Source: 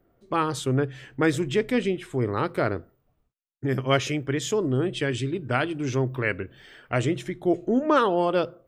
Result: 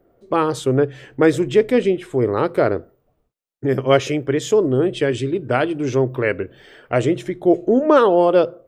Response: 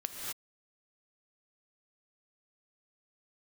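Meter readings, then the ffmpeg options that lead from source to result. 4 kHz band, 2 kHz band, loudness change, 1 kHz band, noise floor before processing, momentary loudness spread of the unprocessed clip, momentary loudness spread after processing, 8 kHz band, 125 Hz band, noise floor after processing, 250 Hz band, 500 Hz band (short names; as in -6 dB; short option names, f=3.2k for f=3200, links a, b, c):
+2.0 dB, +3.0 dB, +7.0 dB, +5.0 dB, -71 dBFS, 7 LU, 9 LU, +2.0 dB, +3.0 dB, -68 dBFS, +6.5 dB, +9.5 dB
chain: -af "equalizer=f=490:w=0.93:g=8.5,volume=2dB"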